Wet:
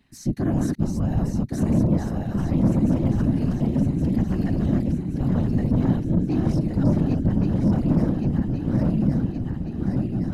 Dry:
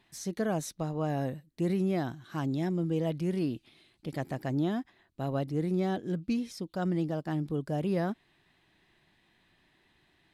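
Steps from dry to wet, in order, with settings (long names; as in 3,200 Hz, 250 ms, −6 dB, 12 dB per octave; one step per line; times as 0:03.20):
feedback delay that plays each chunk backwards 560 ms, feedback 75%, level −2 dB
low shelf with overshoot 260 Hz +8.5 dB, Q 3
notch filter 3,400 Hz, Q 8
soft clipping −16 dBFS, distortion −12 dB
random phases in short frames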